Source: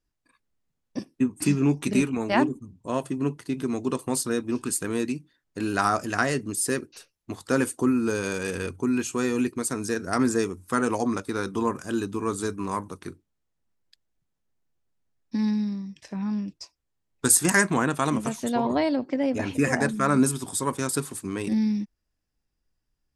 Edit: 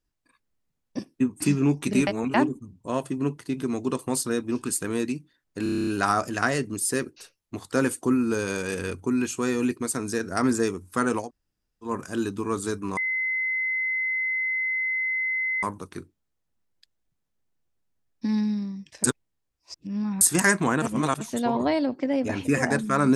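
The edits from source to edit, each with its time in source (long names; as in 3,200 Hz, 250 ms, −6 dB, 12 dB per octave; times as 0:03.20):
0:02.07–0:02.34: reverse
0:05.63: stutter 0.03 s, 9 plays
0:10.99–0:11.65: fill with room tone, crossfade 0.16 s
0:12.73: insert tone 2,050 Hz −23.5 dBFS 2.66 s
0:16.14–0:17.31: reverse
0:17.92–0:18.31: reverse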